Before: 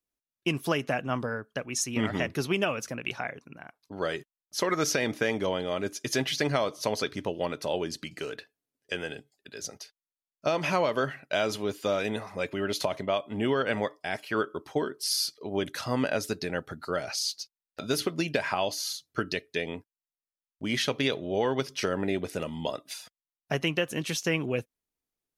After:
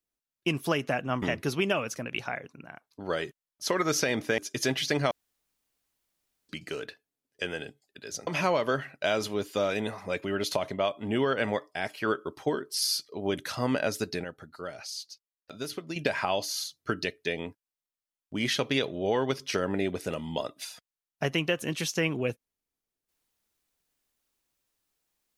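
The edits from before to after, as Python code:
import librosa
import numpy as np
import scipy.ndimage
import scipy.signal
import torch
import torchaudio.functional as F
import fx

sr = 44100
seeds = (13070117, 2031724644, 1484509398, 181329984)

y = fx.edit(x, sr, fx.cut(start_s=1.22, length_s=0.92),
    fx.cut(start_s=5.3, length_s=0.58),
    fx.room_tone_fill(start_s=6.61, length_s=1.38),
    fx.cut(start_s=9.77, length_s=0.79),
    fx.clip_gain(start_s=16.53, length_s=1.72, db=-8.0), tone=tone)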